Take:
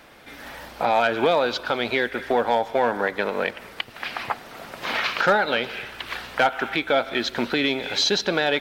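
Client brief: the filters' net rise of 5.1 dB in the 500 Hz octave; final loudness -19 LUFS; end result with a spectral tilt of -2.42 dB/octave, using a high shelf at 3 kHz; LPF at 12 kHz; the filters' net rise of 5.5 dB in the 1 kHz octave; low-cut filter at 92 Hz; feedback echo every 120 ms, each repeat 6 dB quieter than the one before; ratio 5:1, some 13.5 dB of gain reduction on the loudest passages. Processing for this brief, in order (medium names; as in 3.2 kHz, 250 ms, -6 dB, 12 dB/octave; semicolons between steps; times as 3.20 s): high-pass 92 Hz; low-pass 12 kHz; peaking EQ 500 Hz +4.5 dB; peaking EQ 1 kHz +5 dB; treble shelf 3 kHz +6.5 dB; compression 5:1, threshold -26 dBFS; feedback delay 120 ms, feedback 50%, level -6 dB; trim +9 dB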